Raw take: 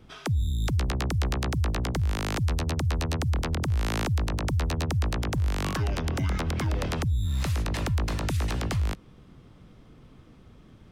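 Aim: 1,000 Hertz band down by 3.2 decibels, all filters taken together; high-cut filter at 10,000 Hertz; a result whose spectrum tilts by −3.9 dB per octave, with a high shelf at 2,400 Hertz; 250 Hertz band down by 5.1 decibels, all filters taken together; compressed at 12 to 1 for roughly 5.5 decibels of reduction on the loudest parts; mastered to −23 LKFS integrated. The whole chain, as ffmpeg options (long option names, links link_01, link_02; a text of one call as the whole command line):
ffmpeg -i in.wav -af "lowpass=10000,equalizer=frequency=250:width_type=o:gain=-8,equalizer=frequency=1000:width_type=o:gain=-5.5,highshelf=frequency=2400:gain=8.5,acompressor=threshold=-28dB:ratio=12,volume=10dB" out.wav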